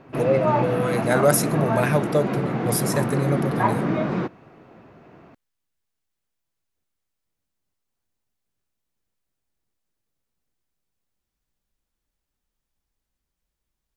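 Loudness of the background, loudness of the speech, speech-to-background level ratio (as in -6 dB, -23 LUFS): -24.5 LUFS, -24.0 LUFS, 0.5 dB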